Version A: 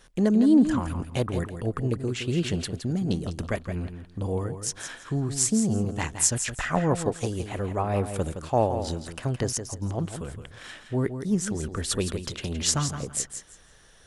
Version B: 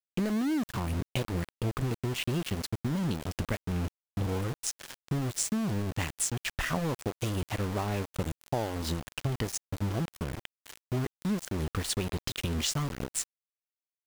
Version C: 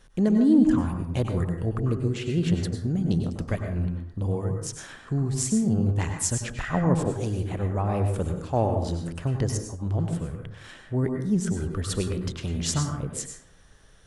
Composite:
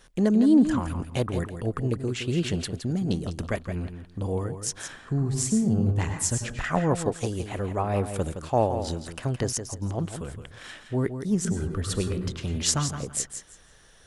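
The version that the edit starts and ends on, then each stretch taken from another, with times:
A
0:04.88–0:06.64: punch in from C
0:11.45–0:12.58: punch in from C
not used: B

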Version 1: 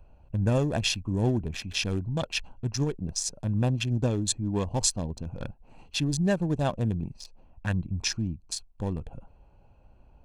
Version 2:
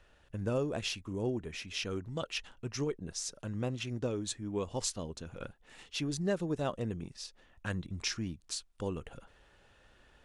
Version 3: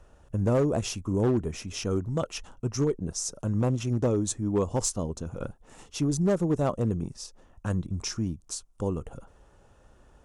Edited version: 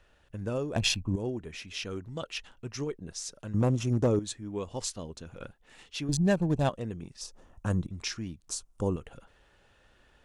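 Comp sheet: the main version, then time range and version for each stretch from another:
2
0:00.76–0:01.16: punch in from 1
0:03.54–0:04.19: punch in from 3
0:06.09–0:06.69: punch in from 1
0:07.21–0:07.87: punch in from 3
0:08.48–0:08.96: punch in from 3

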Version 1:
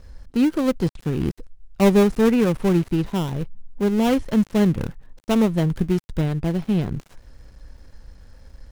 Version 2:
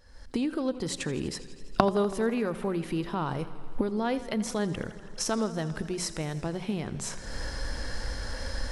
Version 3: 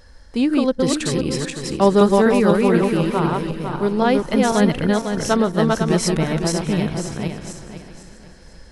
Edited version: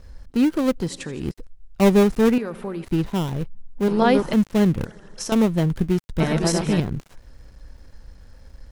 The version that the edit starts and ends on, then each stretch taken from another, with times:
1
0:00.85–0:01.26: punch in from 2, crossfade 0.16 s
0:02.38–0:02.85: punch in from 2
0:03.88–0:04.33: punch in from 3
0:04.85–0:05.32: punch in from 2
0:06.20–0:06.80: punch in from 3

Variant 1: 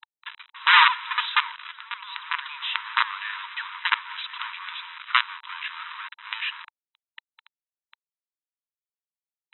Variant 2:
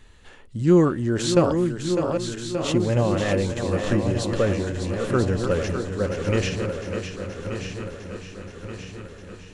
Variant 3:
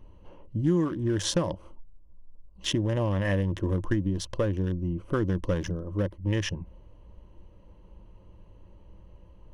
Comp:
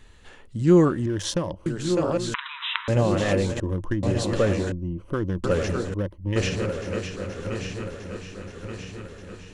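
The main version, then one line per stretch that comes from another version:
2
0:01.06–0:01.66: punch in from 3
0:02.34–0:02.88: punch in from 1
0:03.60–0:04.03: punch in from 3
0:04.72–0:05.44: punch in from 3
0:05.94–0:06.36: punch in from 3

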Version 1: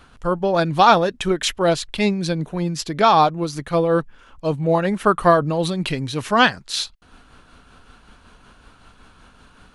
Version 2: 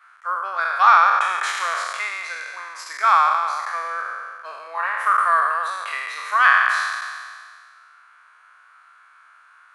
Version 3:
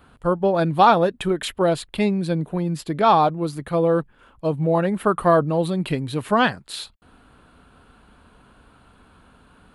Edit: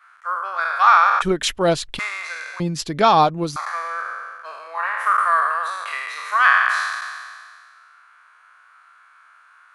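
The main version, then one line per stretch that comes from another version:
2
0:01.22–0:01.99: punch in from 1
0:02.60–0:03.56: punch in from 1
not used: 3

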